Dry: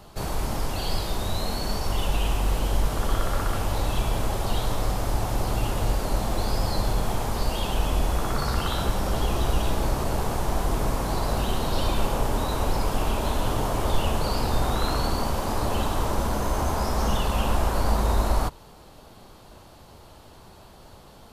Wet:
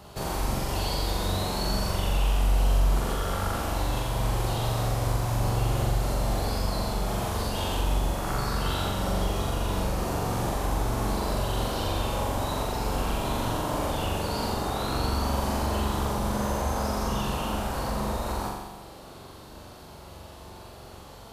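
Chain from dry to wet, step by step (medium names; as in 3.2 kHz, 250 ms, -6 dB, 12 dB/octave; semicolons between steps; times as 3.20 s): high-pass 41 Hz; compression, threshold -28 dBFS, peak gain reduction 9.5 dB; flutter echo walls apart 7.4 m, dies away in 1.1 s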